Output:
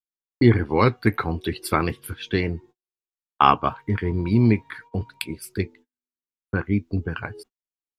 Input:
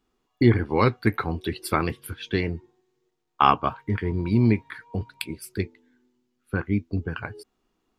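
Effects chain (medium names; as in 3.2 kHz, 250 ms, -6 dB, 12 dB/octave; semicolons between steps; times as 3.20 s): gate -48 dBFS, range -40 dB; trim +2 dB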